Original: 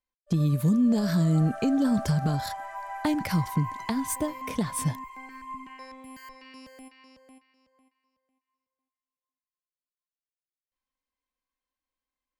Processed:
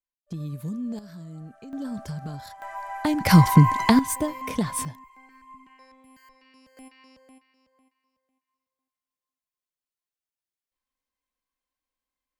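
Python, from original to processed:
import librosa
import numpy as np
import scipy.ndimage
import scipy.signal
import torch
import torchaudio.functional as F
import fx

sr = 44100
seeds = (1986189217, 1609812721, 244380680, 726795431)

y = fx.gain(x, sr, db=fx.steps((0.0, -9.5), (0.99, -18.0), (1.73, -9.0), (2.62, 2.0), (3.26, 12.0), (3.99, 2.5), (4.85, -9.0), (6.77, 0.5)))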